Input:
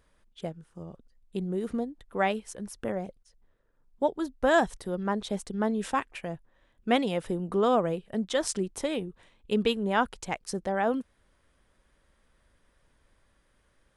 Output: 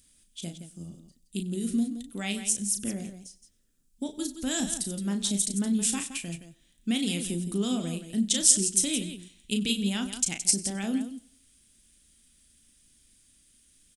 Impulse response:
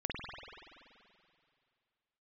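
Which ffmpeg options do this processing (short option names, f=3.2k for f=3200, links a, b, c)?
-filter_complex "[0:a]asplit=2[a][b];[b]aecho=0:1:95|190|285:0.0891|0.0357|0.0143[c];[a][c]amix=inputs=2:normalize=0,alimiter=limit=-17.5dB:level=0:latency=1:release=124,equalizer=f=250:t=o:w=1:g=10,equalizer=f=500:t=o:w=1:g=-10,equalizer=f=1k:t=o:w=1:g=-12,equalizer=f=8k:t=o:w=1:g=8,aexciter=amount=5.1:drive=1.2:freq=2.5k,asplit=2[d][e];[e]aecho=0:1:34.99|169.1:0.447|0.316[f];[d][f]amix=inputs=2:normalize=0,volume=-3.5dB"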